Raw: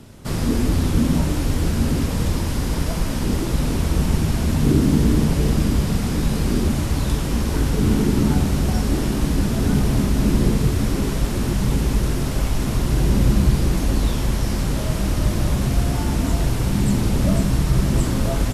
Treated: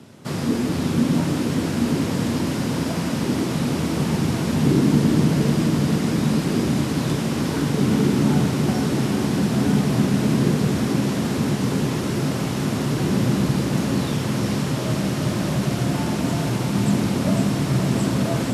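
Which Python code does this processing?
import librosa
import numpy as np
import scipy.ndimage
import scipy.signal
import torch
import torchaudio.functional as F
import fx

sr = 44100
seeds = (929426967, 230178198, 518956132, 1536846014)

p1 = scipy.signal.sosfilt(scipy.signal.butter(4, 120.0, 'highpass', fs=sr, output='sos'), x)
p2 = fx.high_shelf(p1, sr, hz=10000.0, db=-9.5)
y = p2 + fx.echo_diffused(p2, sr, ms=501, feedback_pct=79, wet_db=-7.0, dry=0)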